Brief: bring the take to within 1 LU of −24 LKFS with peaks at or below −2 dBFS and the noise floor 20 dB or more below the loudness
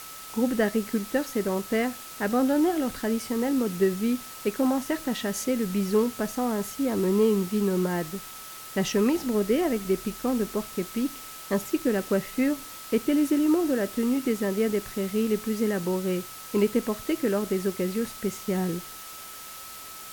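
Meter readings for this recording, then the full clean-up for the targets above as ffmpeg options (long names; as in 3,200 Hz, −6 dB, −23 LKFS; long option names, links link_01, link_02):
interfering tone 1,300 Hz; level of the tone −46 dBFS; background noise floor −42 dBFS; target noise floor −47 dBFS; integrated loudness −26.5 LKFS; sample peak −11.5 dBFS; target loudness −24.0 LKFS
→ -af "bandreject=frequency=1300:width=30"
-af "afftdn=noise_reduction=6:noise_floor=-42"
-af "volume=2.5dB"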